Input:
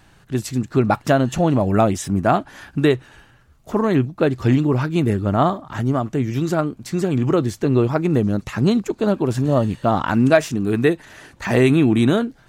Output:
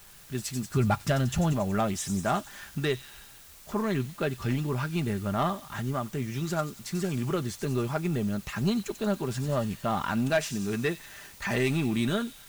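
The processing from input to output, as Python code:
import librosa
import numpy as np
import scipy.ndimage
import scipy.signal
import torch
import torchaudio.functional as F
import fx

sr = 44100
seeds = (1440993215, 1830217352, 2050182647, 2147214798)

p1 = fx.peak_eq(x, sr, hz=350.0, db=-8.0, octaves=2.5)
p2 = 10.0 ** (-14.0 / 20.0) * np.tanh(p1 / 10.0 ** (-14.0 / 20.0))
p3 = p2 + 0.4 * np.pad(p2, (int(5.0 * sr / 1000.0), 0))[:len(p2)]
p4 = fx.quant_dither(p3, sr, seeds[0], bits=6, dither='triangular')
p5 = p3 + (p4 * librosa.db_to_amplitude(-10.0))
p6 = fx.peak_eq(p5, sr, hz=88.0, db=13.5, octaves=1.1, at=(0.71, 1.53))
p7 = p6 + fx.echo_wet_highpass(p6, sr, ms=92, feedback_pct=66, hz=4900.0, wet_db=-6, dry=0)
y = p7 * librosa.db_to_amplitude(-7.0)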